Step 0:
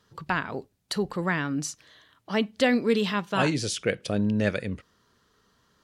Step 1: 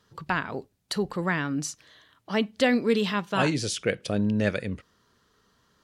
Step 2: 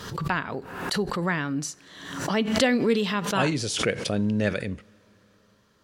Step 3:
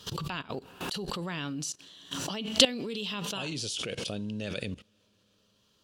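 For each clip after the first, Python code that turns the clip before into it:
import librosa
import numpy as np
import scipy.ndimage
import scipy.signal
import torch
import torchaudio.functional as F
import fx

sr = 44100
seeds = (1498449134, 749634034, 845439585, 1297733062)

y1 = x
y2 = fx.rev_double_slope(y1, sr, seeds[0], early_s=0.31, late_s=4.7, knee_db=-20, drr_db=19.5)
y2 = fx.pre_swell(y2, sr, db_per_s=57.0)
y3 = fx.high_shelf_res(y2, sr, hz=2400.0, db=6.0, q=3.0)
y3 = fx.level_steps(y3, sr, step_db=17)
y3 = F.gain(torch.from_numpy(y3), -1.0).numpy()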